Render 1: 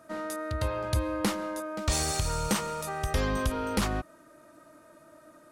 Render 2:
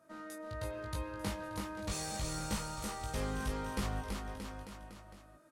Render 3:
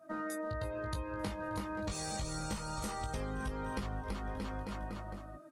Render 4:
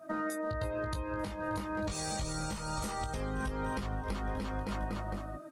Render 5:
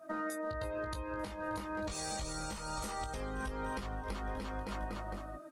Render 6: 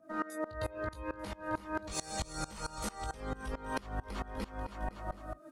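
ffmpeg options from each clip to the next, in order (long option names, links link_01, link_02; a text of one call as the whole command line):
ffmpeg -i in.wav -filter_complex "[0:a]flanger=delay=18.5:depth=2:speed=0.38,asplit=2[link_01][link_02];[link_02]aecho=0:1:330|627|894.3|1135|1351:0.631|0.398|0.251|0.158|0.1[link_03];[link_01][link_03]amix=inputs=2:normalize=0,volume=-8dB" out.wav
ffmpeg -i in.wav -af "acompressor=threshold=-46dB:ratio=8,afftdn=noise_reduction=13:noise_floor=-60,volume=11dB" out.wav
ffmpeg -i in.wav -af "alimiter=level_in=8.5dB:limit=-24dB:level=0:latency=1:release=363,volume=-8.5dB,volume=7dB" out.wav
ffmpeg -i in.wav -af "equalizer=frequency=130:width=0.91:gain=-7,volume=-2dB" out.wav
ffmpeg -i in.wav -filter_complex "[0:a]acrossover=split=410|830|6500[link_01][link_02][link_03][link_04];[link_01]acompressor=mode=upward:threshold=-46dB:ratio=2.5[link_05];[link_05][link_02][link_03][link_04]amix=inputs=4:normalize=0,aeval=exprs='val(0)*pow(10,-22*if(lt(mod(-4.5*n/s,1),2*abs(-4.5)/1000),1-mod(-4.5*n/s,1)/(2*abs(-4.5)/1000),(mod(-4.5*n/s,1)-2*abs(-4.5)/1000)/(1-2*abs(-4.5)/1000))/20)':channel_layout=same,volume=7dB" out.wav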